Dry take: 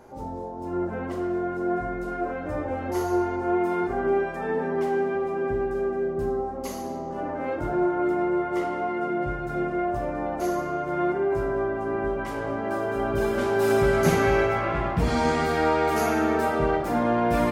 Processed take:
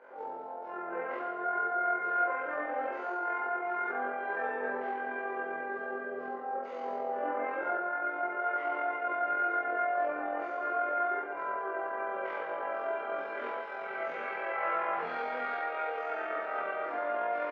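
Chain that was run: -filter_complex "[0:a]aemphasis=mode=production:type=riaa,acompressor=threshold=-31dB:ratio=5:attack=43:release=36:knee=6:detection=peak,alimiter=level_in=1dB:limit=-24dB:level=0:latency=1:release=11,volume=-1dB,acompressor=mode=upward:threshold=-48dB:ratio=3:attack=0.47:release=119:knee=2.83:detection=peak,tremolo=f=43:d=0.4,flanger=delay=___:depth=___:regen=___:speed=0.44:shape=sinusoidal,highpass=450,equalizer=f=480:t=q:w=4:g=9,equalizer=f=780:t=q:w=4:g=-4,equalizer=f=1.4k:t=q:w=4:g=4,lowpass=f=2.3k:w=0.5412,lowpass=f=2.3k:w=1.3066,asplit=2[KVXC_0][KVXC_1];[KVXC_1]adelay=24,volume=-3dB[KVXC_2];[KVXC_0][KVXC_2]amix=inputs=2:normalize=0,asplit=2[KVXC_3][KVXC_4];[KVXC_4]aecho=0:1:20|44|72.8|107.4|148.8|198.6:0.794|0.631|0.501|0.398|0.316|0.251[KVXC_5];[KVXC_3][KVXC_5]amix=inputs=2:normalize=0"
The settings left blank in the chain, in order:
1.9, 4.3, 85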